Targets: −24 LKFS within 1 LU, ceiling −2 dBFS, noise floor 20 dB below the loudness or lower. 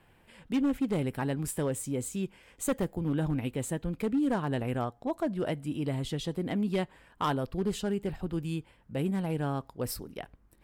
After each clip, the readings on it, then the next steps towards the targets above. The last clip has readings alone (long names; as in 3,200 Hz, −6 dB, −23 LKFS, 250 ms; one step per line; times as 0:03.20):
share of clipped samples 1.2%; peaks flattened at −22.5 dBFS; integrated loudness −32.5 LKFS; sample peak −22.5 dBFS; target loudness −24.0 LKFS
→ clipped peaks rebuilt −22.5 dBFS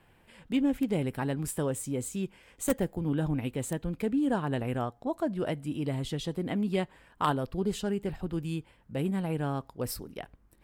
share of clipped samples 0.0%; integrated loudness −32.0 LKFS; sample peak −13.5 dBFS; target loudness −24.0 LKFS
→ level +8 dB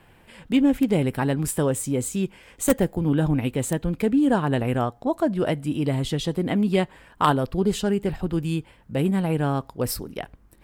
integrated loudness −24.0 LKFS; sample peak −5.5 dBFS; background noise floor −55 dBFS